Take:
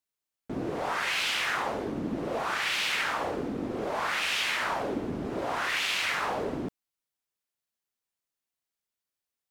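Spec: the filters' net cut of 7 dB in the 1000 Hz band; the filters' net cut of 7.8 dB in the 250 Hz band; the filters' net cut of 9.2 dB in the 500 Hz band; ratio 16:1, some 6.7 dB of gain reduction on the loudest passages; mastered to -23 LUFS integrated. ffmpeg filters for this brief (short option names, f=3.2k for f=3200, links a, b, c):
-af "equalizer=f=250:t=o:g=-7,equalizer=f=500:t=o:g=-8,equalizer=f=1k:t=o:g=-6.5,acompressor=threshold=-33dB:ratio=16,volume=14dB"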